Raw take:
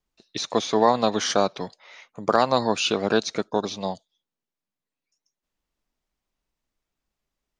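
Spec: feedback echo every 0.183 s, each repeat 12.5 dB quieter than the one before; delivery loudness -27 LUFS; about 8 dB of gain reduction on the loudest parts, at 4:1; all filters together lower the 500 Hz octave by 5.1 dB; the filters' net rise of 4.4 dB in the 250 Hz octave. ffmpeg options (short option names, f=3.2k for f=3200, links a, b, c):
-af "equalizer=f=250:t=o:g=7.5,equalizer=f=500:t=o:g=-8.5,acompressor=threshold=-25dB:ratio=4,aecho=1:1:183|366|549:0.237|0.0569|0.0137,volume=3dB"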